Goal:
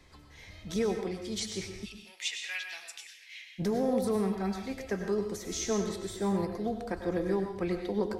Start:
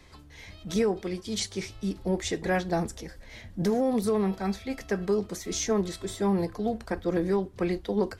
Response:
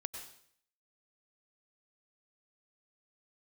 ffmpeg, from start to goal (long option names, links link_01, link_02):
-filter_complex "[0:a]asplit=3[link_01][link_02][link_03];[link_01]afade=type=out:start_time=1.84:duration=0.02[link_04];[link_02]highpass=frequency=2600:width_type=q:width=4.1,afade=type=in:start_time=1.84:duration=0.02,afade=type=out:start_time=3.58:duration=0.02[link_05];[link_03]afade=type=in:start_time=3.58:duration=0.02[link_06];[link_04][link_05][link_06]amix=inputs=3:normalize=0[link_07];[1:a]atrim=start_sample=2205,afade=type=out:start_time=0.32:duration=0.01,atrim=end_sample=14553[link_08];[link_07][link_08]afir=irnorm=-1:irlink=0,volume=-2dB"